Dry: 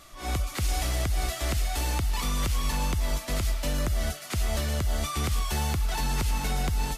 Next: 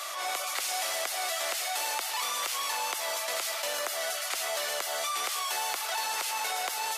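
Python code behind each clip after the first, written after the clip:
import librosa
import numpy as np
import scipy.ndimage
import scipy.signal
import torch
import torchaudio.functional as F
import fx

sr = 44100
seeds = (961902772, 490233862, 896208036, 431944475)

y = scipy.signal.sosfilt(scipy.signal.butter(4, 570.0, 'highpass', fs=sr, output='sos'), x)
y = fx.env_flatten(y, sr, amount_pct=70)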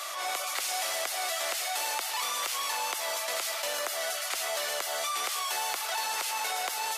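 y = np.clip(x, -10.0 ** (-19.5 / 20.0), 10.0 ** (-19.5 / 20.0))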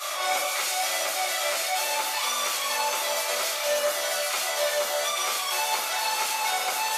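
y = fx.room_shoebox(x, sr, seeds[0], volume_m3=55.0, walls='mixed', distance_m=1.9)
y = fx.rider(y, sr, range_db=10, speed_s=0.5)
y = F.gain(torch.from_numpy(y), -4.0).numpy()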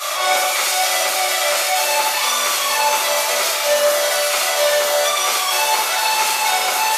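y = fx.room_flutter(x, sr, wall_m=12.0, rt60_s=0.6)
y = F.gain(torch.from_numpy(y), 8.0).numpy()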